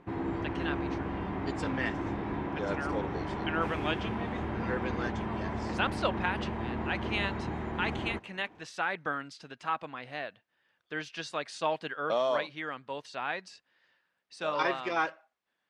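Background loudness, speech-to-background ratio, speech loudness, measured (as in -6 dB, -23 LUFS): -35.5 LUFS, 0.5 dB, -35.0 LUFS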